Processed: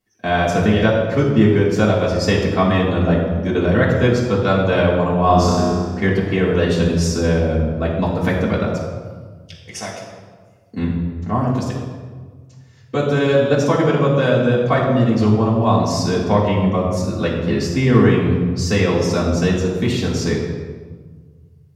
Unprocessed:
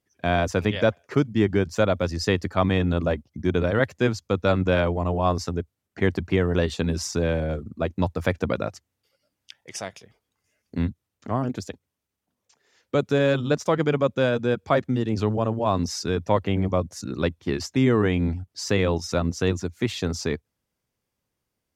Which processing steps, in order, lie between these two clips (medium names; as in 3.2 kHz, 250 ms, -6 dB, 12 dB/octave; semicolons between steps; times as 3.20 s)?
5.26–6.01 s: flutter echo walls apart 5.5 m, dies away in 1.1 s; reverberation RT60 1.5 s, pre-delay 3 ms, DRR -7 dB; trim -1.5 dB